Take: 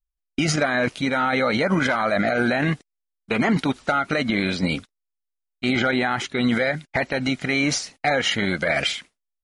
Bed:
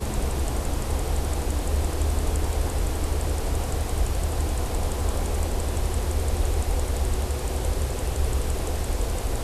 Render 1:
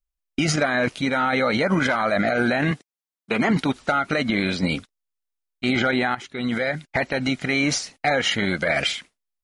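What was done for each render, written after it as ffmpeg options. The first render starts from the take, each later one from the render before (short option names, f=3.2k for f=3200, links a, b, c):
-filter_complex "[0:a]asettb=1/sr,asplit=3[a][b][c];[a]atrim=end=2.714[d];[b]atrim=start=2.71:end=3.51,asetpts=PTS-STARTPTS,afade=t=in:d=0.004:c=qsin,afade=t=out:st=0.796:d=0.004:c=qsin,highpass=130[e];[c]atrim=start=3.506[f];[d][e]acrossfade=d=0.004:c1=hsin:c2=qsin[g];[g][f]acrossfade=d=0.004:c1=qsin:c2=hsin,asplit=2[h][i];[h]atrim=end=6.15,asetpts=PTS-STARTPTS,afade=t=out:st=6.146:d=0.004:c=hsin:silence=0.237137[j];[i]atrim=start=6.15,asetpts=PTS-STARTPTS,afade=t=in:d=0.7:silence=0.237137[k];[j][k]concat=n=2:v=0:a=1"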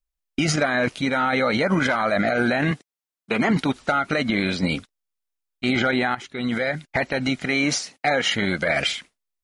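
-filter_complex "[0:a]asettb=1/sr,asplit=3[a][b][c];[a]atrim=end=7.444[d];[b]atrim=start=7.44:end=8.35,asetpts=PTS-STARTPTS,afade=t=in:d=0.004:c=qsin,afade=t=out:st=0.906:d=0.004:c=qsin,highpass=130[e];[c]atrim=start=8.346[f];[d][e]acrossfade=d=0.004:c1=hsin:c2=qsin[g];[g][f]acrossfade=d=0.004:c1=qsin:c2=hsin"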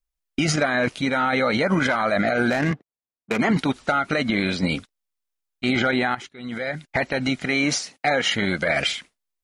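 -filter_complex "[0:a]asettb=1/sr,asplit=3[a][b][c];[a]atrim=end=2.504[d];[b]atrim=start=2.5:end=3.39,asetpts=PTS-STARTPTS,afade=t=in:d=0.004:c=qsin,afade=t=out:st=0.886:d=0.004:c=qsin,adynamicsmooth=sensitivity=2:basefreq=1.1k[e];[c]atrim=start=3.386[f];[d][e]acrossfade=d=0.004:c1=hsin:c2=qsin[g];[g][f]acrossfade=d=0.004:c1=qsin:c2=hsin,asplit=2[h][i];[h]atrim=end=6.29,asetpts=PTS-STARTPTS,afade=t=out:st=6.286:d=0.004:c=hsin:silence=0.16788[j];[i]atrim=start=6.29,asetpts=PTS-STARTPTS,afade=t=in:d=0.63:silence=0.16788[k];[j][k]concat=n=2:v=0:a=1"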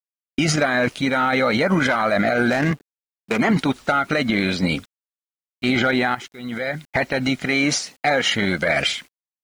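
-filter_complex "[0:a]asplit=2[a][b];[b]asoftclip=type=hard:threshold=-16.5dB,volume=-10dB[c];[a][c]amix=inputs=2:normalize=0,acrusher=bits=8:mix=0:aa=0.000001"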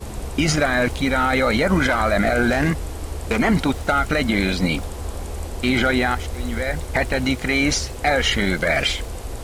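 -filter_complex "[1:a]volume=-4dB[a];[0:a][a]amix=inputs=2:normalize=0"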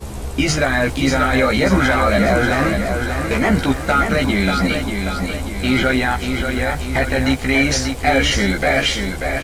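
-filter_complex "[0:a]asplit=2[a][b];[b]adelay=15,volume=-3dB[c];[a][c]amix=inputs=2:normalize=0,aecho=1:1:588|1176|1764|2352|2940|3528:0.501|0.251|0.125|0.0626|0.0313|0.0157"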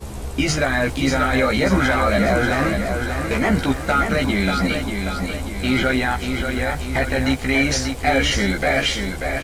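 -af "volume=-2.5dB"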